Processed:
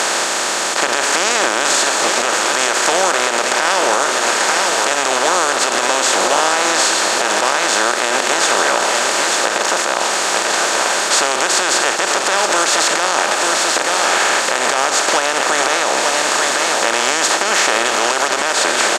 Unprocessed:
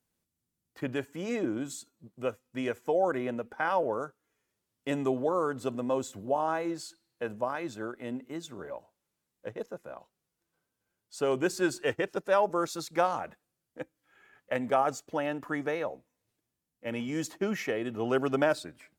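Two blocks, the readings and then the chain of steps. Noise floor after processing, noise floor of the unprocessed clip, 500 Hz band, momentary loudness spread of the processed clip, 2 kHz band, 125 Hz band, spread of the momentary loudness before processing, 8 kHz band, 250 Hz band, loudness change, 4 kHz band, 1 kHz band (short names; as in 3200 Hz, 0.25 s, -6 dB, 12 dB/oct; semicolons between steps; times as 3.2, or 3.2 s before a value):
-19 dBFS, -85 dBFS, +12.0 dB, 2 LU, +23.5 dB, n/a, 15 LU, +32.5 dB, +6.5 dB, +17.5 dB, +30.5 dB, +19.0 dB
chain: per-bin compression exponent 0.2; weighting filter ITU-R 468; on a send: echo 0.89 s -8 dB; on the sum: compressor, threshold -21 dBFS, peak gain reduction 8 dB; maximiser +12.5 dB; gain -1.5 dB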